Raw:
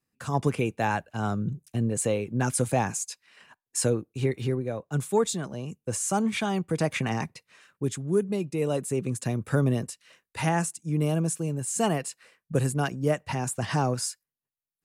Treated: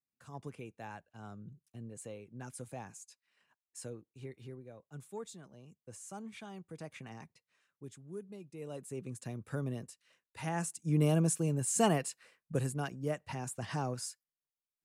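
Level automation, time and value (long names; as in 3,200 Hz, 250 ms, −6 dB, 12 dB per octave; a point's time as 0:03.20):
0:08.42 −20 dB
0:08.99 −13.5 dB
0:10.41 −13.5 dB
0:10.88 −2.5 dB
0:11.84 −2.5 dB
0:12.87 −10.5 dB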